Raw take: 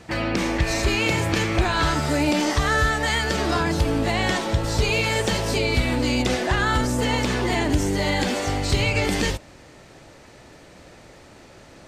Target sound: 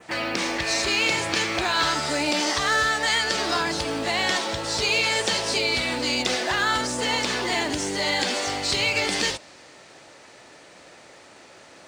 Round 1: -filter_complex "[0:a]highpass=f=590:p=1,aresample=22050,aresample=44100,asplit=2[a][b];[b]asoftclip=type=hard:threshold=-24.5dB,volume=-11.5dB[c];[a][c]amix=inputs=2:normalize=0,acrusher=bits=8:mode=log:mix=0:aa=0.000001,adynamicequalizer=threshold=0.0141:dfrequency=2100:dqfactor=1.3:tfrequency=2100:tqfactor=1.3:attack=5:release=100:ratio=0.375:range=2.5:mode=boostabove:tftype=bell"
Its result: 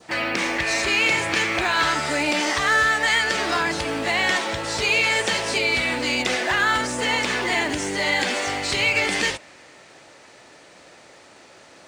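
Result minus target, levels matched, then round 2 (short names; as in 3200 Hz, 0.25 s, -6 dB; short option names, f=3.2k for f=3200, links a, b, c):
hard clip: distortion -6 dB; 4000 Hz band -3.0 dB
-filter_complex "[0:a]highpass=f=590:p=1,aresample=22050,aresample=44100,asplit=2[a][b];[b]asoftclip=type=hard:threshold=-36.5dB,volume=-11.5dB[c];[a][c]amix=inputs=2:normalize=0,acrusher=bits=8:mode=log:mix=0:aa=0.000001,adynamicequalizer=threshold=0.0141:dfrequency=4600:dqfactor=1.3:tfrequency=4600:tqfactor=1.3:attack=5:release=100:ratio=0.375:range=2.5:mode=boostabove:tftype=bell"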